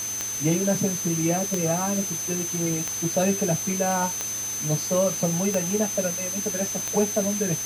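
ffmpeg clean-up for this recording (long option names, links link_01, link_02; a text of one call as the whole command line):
ffmpeg -i in.wav -af "adeclick=threshold=4,bandreject=frequency=109.7:width_type=h:width=4,bandreject=frequency=219.4:width_type=h:width=4,bandreject=frequency=329.1:width_type=h:width=4,bandreject=frequency=438.8:width_type=h:width=4,bandreject=frequency=6200:width=30,afftdn=noise_reduction=30:noise_floor=-30" out.wav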